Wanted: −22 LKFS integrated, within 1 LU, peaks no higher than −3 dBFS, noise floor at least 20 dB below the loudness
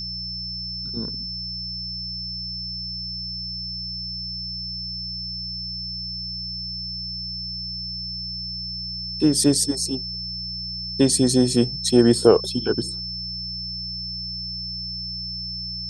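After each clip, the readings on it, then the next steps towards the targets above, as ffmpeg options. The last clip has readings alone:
mains hum 60 Hz; hum harmonics up to 180 Hz; level of the hum −35 dBFS; interfering tone 5,300 Hz; level of the tone −29 dBFS; integrated loudness −24.5 LKFS; sample peak −1.5 dBFS; target loudness −22.0 LKFS
→ -af "bandreject=frequency=60:width_type=h:width=4,bandreject=frequency=120:width_type=h:width=4,bandreject=frequency=180:width_type=h:width=4"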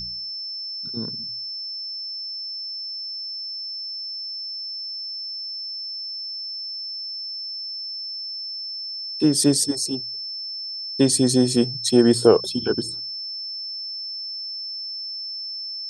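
mains hum none found; interfering tone 5,300 Hz; level of the tone −29 dBFS
→ -af "bandreject=frequency=5300:width=30"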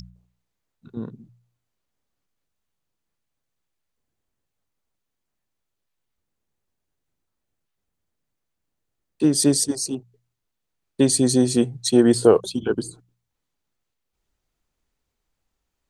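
interfering tone none found; integrated loudness −19.5 LKFS; sample peak −1.5 dBFS; target loudness −22.0 LKFS
→ -af "volume=-2.5dB"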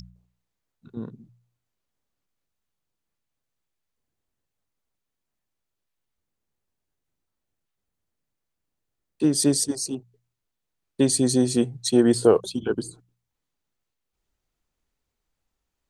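integrated loudness −22.0 LKFS; sample peak −4.0 dBFS; background noise floor −83 dBFS

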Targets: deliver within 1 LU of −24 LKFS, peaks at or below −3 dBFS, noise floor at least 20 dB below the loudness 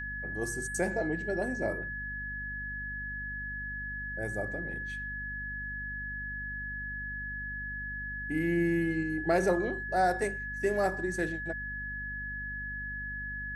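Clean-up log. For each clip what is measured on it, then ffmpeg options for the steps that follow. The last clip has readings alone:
mains hum 50 Hz; hum harmonics up to 250 Hz; level of the hum −41 dBFS; interfering tone 1,700 Hz; level of the tone −36 dBFS; integrated loudness −33.5 LKFS; sample peak −15.0 dBFS; target loudness −24.0 LKFS
→ -af "bandreject=frequency=50:width_type=h:width=4,bandreject=frequency=100:width_type=h:width=4,bandreject=frequency=150:width_type=h:width=4,bandreject=frequency=200:width_type=h:width=4,bandreject=frequency=250:width_type=h:width=4"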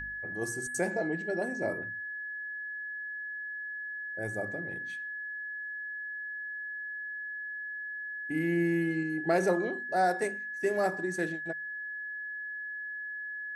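mains hum none found; interfering tone 1,700 Hz; level of the tone −36 dBFS
→ -af "bandreject=frequency=1700:width=30"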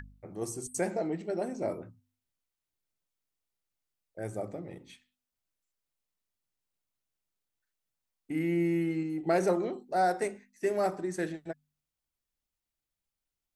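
interfering tone none found; integrated loudness −32.0 LKFS; sample peak −16.0 dBFS; target loudness −24.0 LKFS
→ -af "volume=8dB"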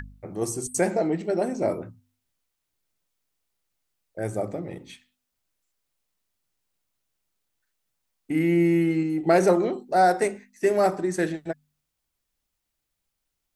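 integrated loudness −24.0 LKFS; sample peak −8.0 dBFS; background noise floor −81 dBFS

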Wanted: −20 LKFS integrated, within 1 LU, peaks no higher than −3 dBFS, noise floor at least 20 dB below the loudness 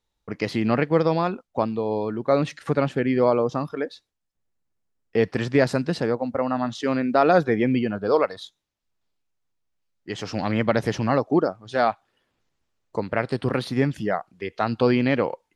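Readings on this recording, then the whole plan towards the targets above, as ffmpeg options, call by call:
integrated loudness −23.5 LKFS; sample peak −5.0 dBFS; target loudness −20.0 LKFS
→ -af "volume=3.5dB,alimiter=limit=-3dB:level=0:latency=1"

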